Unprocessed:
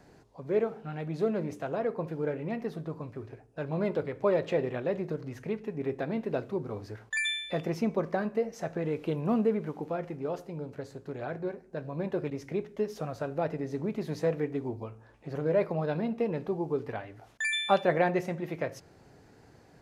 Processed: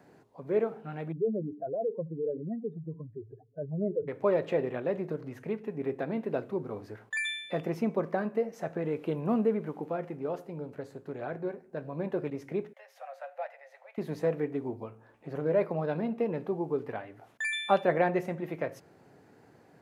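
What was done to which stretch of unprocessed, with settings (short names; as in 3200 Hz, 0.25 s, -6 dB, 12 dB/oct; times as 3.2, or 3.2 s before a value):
1.12–4.08 spectral contrast raised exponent 2.9
12.73–13.98 rippled Chebyshev high-pass 520 Hz, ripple 9 dB
whole clip: HPF 140 Hz 12 dB/oct; bell 5400 Hz -7.5 dB 1.5 oct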